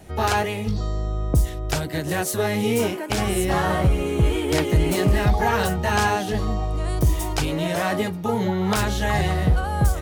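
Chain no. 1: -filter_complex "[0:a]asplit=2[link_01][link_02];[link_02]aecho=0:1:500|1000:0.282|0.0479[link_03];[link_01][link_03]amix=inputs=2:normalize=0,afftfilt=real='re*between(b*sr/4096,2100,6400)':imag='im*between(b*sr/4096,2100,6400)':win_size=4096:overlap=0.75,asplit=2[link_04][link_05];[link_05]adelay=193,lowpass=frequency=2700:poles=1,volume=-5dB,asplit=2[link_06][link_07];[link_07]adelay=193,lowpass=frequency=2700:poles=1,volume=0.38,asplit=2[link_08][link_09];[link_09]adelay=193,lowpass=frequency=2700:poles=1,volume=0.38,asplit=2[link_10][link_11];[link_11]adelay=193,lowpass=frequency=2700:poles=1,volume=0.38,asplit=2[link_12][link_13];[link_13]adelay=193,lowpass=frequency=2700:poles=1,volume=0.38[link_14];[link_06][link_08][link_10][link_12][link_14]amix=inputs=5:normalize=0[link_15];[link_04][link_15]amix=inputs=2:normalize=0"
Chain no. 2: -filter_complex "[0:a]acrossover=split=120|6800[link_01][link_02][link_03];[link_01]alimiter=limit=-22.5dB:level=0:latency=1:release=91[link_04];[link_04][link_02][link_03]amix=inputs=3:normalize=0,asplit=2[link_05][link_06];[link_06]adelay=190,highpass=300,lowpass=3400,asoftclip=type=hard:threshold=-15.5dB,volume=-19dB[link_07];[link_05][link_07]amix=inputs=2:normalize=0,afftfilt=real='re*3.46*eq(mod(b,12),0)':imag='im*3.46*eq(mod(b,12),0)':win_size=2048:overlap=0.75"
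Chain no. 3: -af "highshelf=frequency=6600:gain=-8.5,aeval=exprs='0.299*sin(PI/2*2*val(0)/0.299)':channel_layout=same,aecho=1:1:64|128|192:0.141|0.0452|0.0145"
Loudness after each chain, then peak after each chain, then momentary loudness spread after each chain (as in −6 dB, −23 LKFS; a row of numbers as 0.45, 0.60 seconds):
−33.5, −30.5, −16.0 LKFS; −14.5, −14.0, −9.0 dBFS; 10, 10, 4 LU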